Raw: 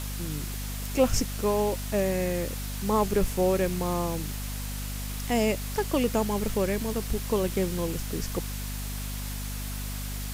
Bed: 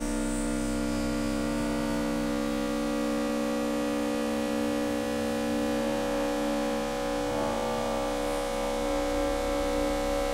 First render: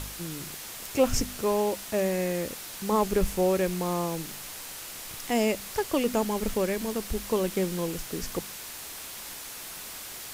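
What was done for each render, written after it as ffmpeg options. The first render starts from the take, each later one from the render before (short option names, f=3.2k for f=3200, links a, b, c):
-af "bandreject=f=50:t=h:w=4,bandreject=f=100:t=h:w=4,bandreject=f=150:t=h:w=4,bandreject=f=200:t=h:w=4,bandreject=f=250:t=h:w=4"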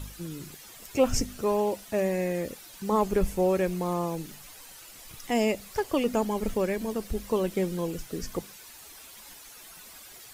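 -af "afftdn=nr=11:nf=-41"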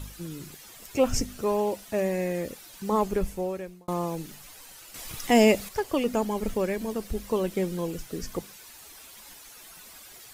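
-filter_complex "[0:a]asettb=1/sr,asplit=3[a][b][c];[a]atrim=end=4.944[d];[b]atrim=start=4.94:end=5.69,asetpts=PTS-STARTPTS,afade=t=in:d=0.004:c=qsin,afade=t=out:st=0.746:d=0.004:c=qsin,acontrast=86[e];[c]atrim=start=5.686[f];[d][e]acrossfade=d=0.004:c1=hsin:c2=qsin[g];[g][f]acrossfade=d=0.004:c1=qsin:c2=hsin,asplit=2[h][i];[h]atrim=end=3.88,asetpts=PTS-STARTPTS,afade=t=out:st=3:d=0.88[j];[i]atrim=start=3.88,asetpts=PTS-STARTPTS,afade=t=in:d=0.004:c=hsin[k];[j][k]concat=n=2:v=0:a=1"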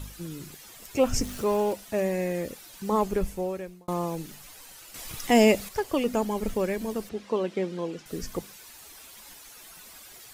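-filter_complex "[0:a]asettb=1/sr,asplit=3[a][b][c];[a]atrim=end=1.214[d];[b]atrim=start=1.21:end=1.73,asetpts=PTS-STARTPTS,afade=t=in:d=0.004:c=qsin,afade=t=out:st=0.516:d=0.004:c=qsin,aeval=exprs='val(0)+0.5*0.0133*sgn(val(0))':c=same[e];[c]atrim=start=1.726[f];[d][e]acrossfade=d=0.004:c1=hsin:c2=qsin[g];[g][f]acrossfade=d=0.004:c1=qsin:c2=hsin,asettb=1/sr,asplit=3[h][i][j];[h]atrim=end=7.094[k];[i]atrim=start=7.09:end=8.06,asetpts=PTS-STARTPTS,afade=t=in:d=0.004:c=qsin,afade=t=out:st=0.966:d=0.004:c=qsin,highpass=210,lowpass=4.5k[l];[j]atrim=start=8.056[m];[k][l]acrossfade=d=0.004:c1=hsin:c2=qsin[n];[n][m]acrossfade=d=0.004:c1=qsin:c2=hsin"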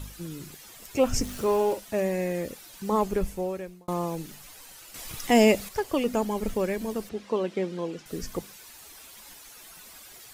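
-filter_complex "[0:a]asettb=1/sr,asplit=3[a][b][c];[a]atrim=end=1.374[d];[b]atrim=start=1.37:end=1.8,asetpts=PTS-STARTPTS,afade=t=in:d=0.004:c=qsin,afade=t=out:st=0.426:d=0.004:c=qsin,asplit=2[e][f];[f]adelay=46,volume=-8.5dB[g];[e][g]amix=inputs=2:normalize=0,atrim=end_sample=18963[h];[c]atrim=start=1.796[i];[d][h]acrossfade=d=0.004:c1=hsin:c2=qsin[j];[j][i]acrossfade=d=0.004:c1=qsin:c2=hsin"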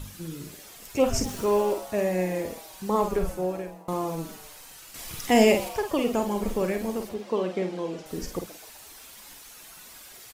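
-filter_complex "[0:a]asplit=2[a][b];[b]adelay=49,volume=-7dB[c];[a][c]amix=inputs=2:normalize=0,asplit=5[d][e][f][g][h];[e]adelay=128,afreqshift=140,volume=-17.5dB[i];[f]adelay=256,afreqshift=280,volume=-23.3dB[j];[g]adelay=384,afreqshift=420,volume=-29.2dB[k];[h]adelay=512,afreqshift=560,volume=-35dB[l];[d][i][j][k][l]amix=inputs=5:normalize=0"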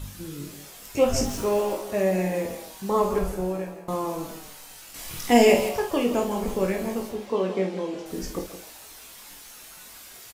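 -filter_complex "[0:a]asplit=2[a][b];[b]adelay=21,volume=-4.5dB[c];[a][c]amix=inputs=2:normalize=0,aecho=1:1:168:0.266"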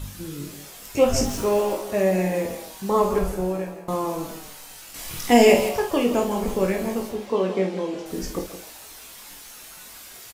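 -af "volume=2.5dB,alimiter=limit=-2dB:level=0:latency=1"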